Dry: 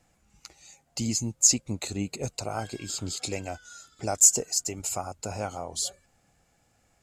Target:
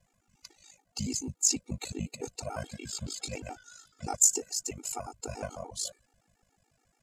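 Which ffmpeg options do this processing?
-af "aeval=exprs='val(0)*sin(2*PI*26*n/s)':c=same,afftfilt=real='re*gt(sin(2*PI*7*pts/sr)*(1-2*mod(floor(b*sr/1024/240),2)),0)':imag='im*gt(sin(2*PI*7*pts/sr)*(1-2*mod(floor(b*sr/1024/240),2)),0)':win_size=1024:overlap=0.75,volume=1.5dB"

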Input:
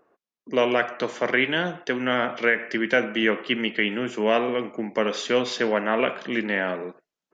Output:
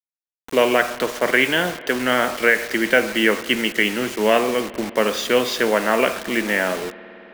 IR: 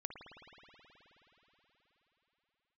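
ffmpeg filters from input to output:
-filter_complex "[0:a]lowshelf=f=210:g=-5,acrusher=bits=5:mix=0:aa=0.000001,asplit=2[a][b];[1:a]atrim=start_sample=2205[c];[b][c]afir=irnorm=-1:irlink=0,volume=-9.5dB[d];[a][d]amix=inputs=2:normalize=0,volume=3.5dB"

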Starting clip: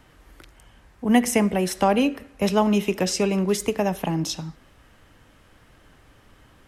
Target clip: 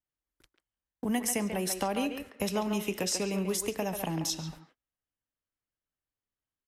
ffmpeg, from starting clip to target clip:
-filter_complex "[0:a]highshelf=f=5.3k:g=12,agate=range=-43dB:threshold=-41dB:ratio=16:detection=peak,acompressor=threshold=-31dB:ratio=2.5,asplit=2[a][b];[b]adelay=140,highpass=300,lowpass=3.4k,asoftclip=type=hard:threshold=-23.5dB,volume=-6dB[c];[a][c]amix=inputs=2:normalize=0,volume=-1.5dB"

